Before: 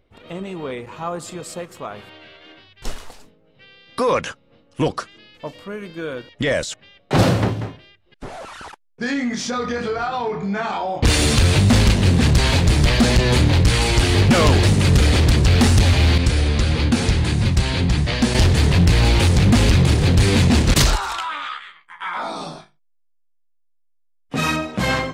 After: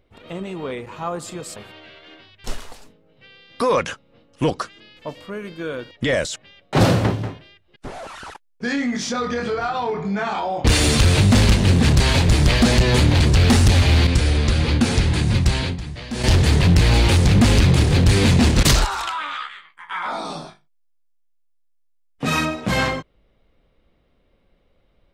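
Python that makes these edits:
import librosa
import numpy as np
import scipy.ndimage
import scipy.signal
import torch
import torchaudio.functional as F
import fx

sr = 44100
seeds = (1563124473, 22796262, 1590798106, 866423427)

y = fx.edit(x, sr, fx.cut(start_s=1.56, length_s=0.38),
    fx.cut(start_s=13.58, length_s=1.73),
    fx.fade_down_up(start_s=17.63, length_s=0.85, db=-12.5, fade_s=0.25, curve='qsin'), tone=tone)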